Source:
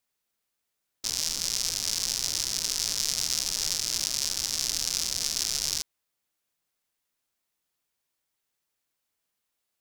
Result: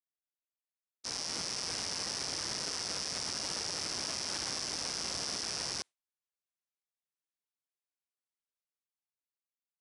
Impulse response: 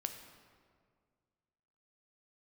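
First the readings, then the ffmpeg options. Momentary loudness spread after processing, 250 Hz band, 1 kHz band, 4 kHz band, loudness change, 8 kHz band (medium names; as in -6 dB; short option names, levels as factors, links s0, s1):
3 LU, +1.0 dB, +2.5 dB, -7.5 dB, -8.0 dB, -10.0 dB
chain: -af "agate=range=0.0224:threshold=0.0355:ratio=3:detection=peak,highpass=71,lowshelf=f=190:g=-10,alimiter=limit=0.0841:level=0:latency=1:release=84,dynaudnorm=f=290:g=7:m=2.82,asoftclip=type=tanh:threshold=0.0237,aresample=22050,aresample=44100,volume=2"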